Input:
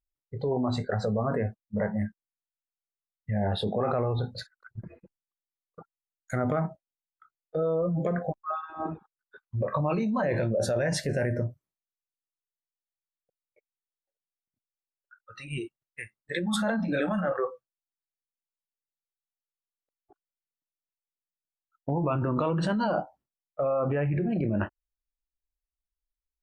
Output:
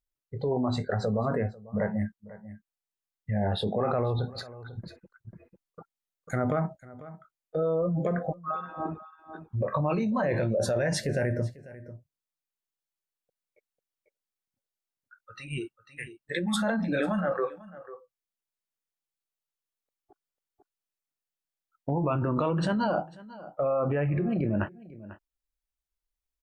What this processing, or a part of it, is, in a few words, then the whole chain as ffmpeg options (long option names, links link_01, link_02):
ducked delay: -filter_complex "[0:a]asplit=3[link_01][link_02][link_03];[link_02]adelay=495,volume=-4dB[link_04];[link_03]apad=whole_len=1187194[link_05];[link_04][link_05]sidechaincompress=threshold=-42dB:ratio=16:attack=35:release=984[link_06];[link_01][link_06]amix=inputs=2:normalize=0"